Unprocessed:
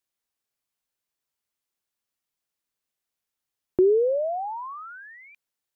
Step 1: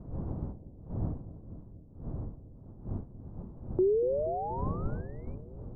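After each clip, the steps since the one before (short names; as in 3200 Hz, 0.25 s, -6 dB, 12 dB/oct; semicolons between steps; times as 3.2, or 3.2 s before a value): wind noise 150 Hz -31 dBFS; resonant high shelf 1500 Hz -14 dB, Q 1.5; analogue delay 0.238 s, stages 1024, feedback 72%, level -14 dB; gain -8 dB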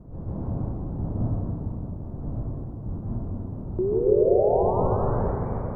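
plate-style reverb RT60 4 s, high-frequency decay 0.85×, pre-delay 0.12 s, DRR -8.5 dB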